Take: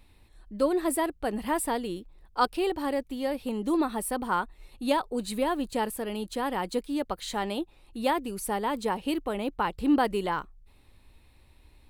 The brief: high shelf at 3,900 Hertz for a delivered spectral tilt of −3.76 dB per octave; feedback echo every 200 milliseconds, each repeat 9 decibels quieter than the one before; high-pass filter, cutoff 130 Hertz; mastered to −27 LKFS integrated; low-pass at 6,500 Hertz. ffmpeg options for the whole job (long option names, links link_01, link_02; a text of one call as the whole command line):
ffmpeg -i in.wav -af "highpass=130,lowpass=6500,highshelf=frequency=3900:gain=-7.5,aecho=1:1:200|400|600|800:0.355|0.124|0.0435|0.0152,volume=2.5dB" out.wav